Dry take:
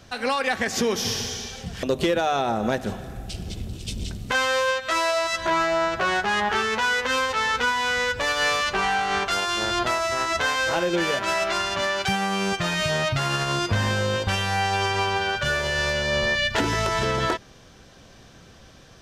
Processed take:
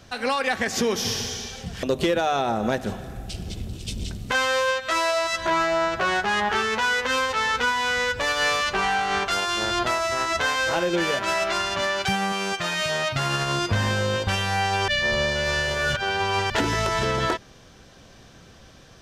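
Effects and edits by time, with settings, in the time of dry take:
12.32–13.16 s: bass shelf 230 Hz -11.5 dB
14.88–16.50 s: reverse

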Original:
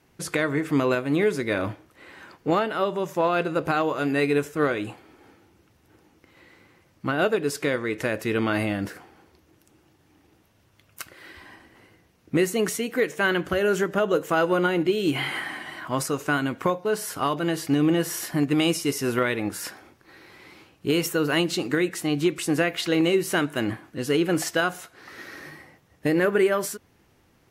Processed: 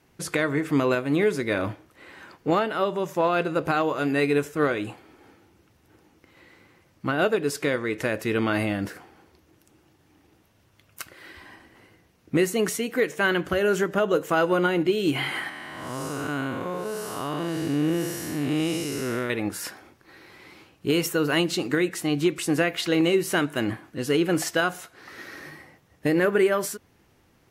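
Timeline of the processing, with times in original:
15.49–19.30 s: spectral blur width 277 ms

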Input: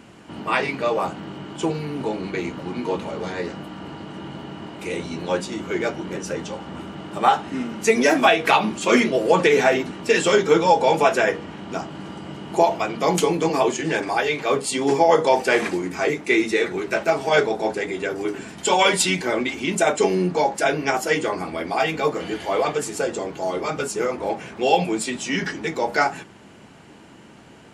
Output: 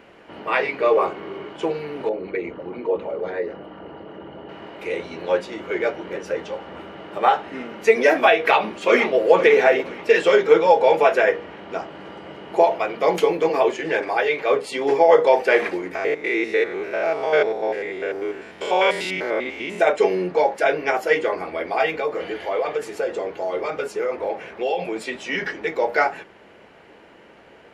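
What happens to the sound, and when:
0.80–1.49 s: small resonant body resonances 390/1100/2200 Hz, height 11 dB
2.09–4.49 s: resonances exaggerated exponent 1.5
8.45–9.31 s: echo throw 490 ms, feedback 40%, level -13 dB
12.82–13.72 s: short-mantissa float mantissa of 6-bit
15.95–19.80 s: spectrogram pixelated in time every 100 ms
21.98–24.96 s: compression 3:1, threshold -22 dBFS
whole clip: ten-band graphic EQ 125 Hz -8 dB, 250 Hz -5 dB, 500 Hz +9 dB, 2 kHz +6 dB, 8 kHz -12 dB; trim -3.5 dB

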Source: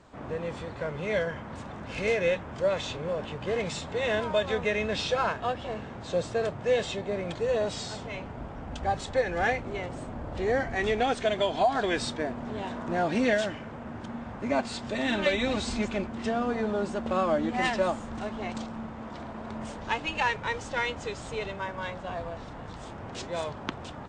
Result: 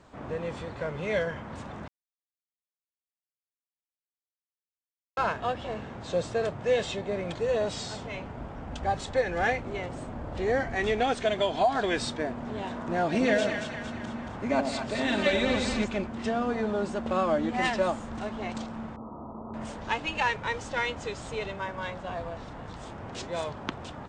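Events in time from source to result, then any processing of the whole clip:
1.88–5.17 s: mute
13.04–15.84 s: two-band feedback delay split 800 Hz, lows 88 ms, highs 228 ms, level -5.5 dB
18.96–19.54 s: rippled Chebyshev low-pass 1.3 kHz, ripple 3 dB

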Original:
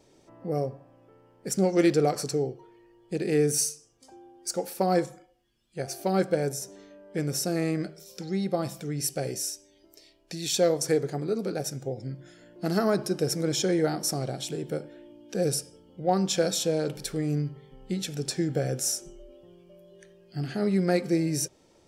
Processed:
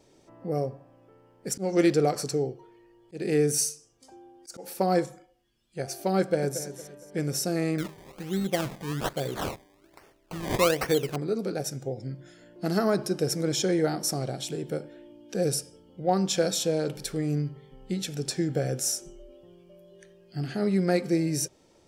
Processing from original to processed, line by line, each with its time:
1.49–4.77 s: slow attack 137 ms
6.19–6.64 s: echo throw 230 ms, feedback 35%, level -11.5 dB
7.78–11.16 s: decimation with a swept rate 22× 1.2 Hz

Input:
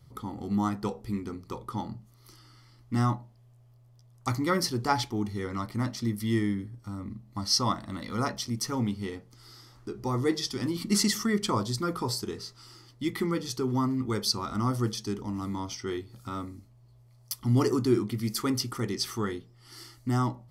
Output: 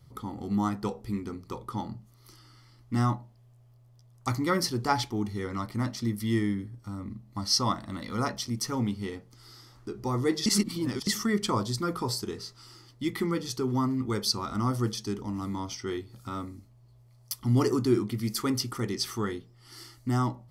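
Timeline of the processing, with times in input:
10.46–11.07 s: reverse

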